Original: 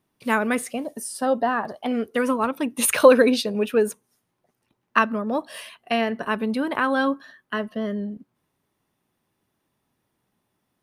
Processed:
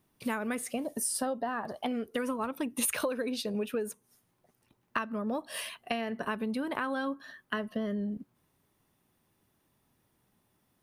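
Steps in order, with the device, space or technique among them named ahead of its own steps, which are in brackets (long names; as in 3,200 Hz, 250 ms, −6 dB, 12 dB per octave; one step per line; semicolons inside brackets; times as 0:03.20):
ASMR close-microphone chain (low-shelf EQ 110 Hz +6.5 dB; downward compressor 8 to 1, threshold −30 dBFS, peak gain reduction 22 dB; high-shelf EQ 8,500 Hz +6 dB)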